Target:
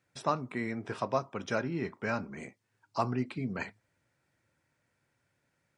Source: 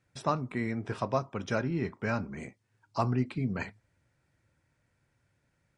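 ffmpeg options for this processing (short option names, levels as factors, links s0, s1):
-af "highpass=f=220:p=1"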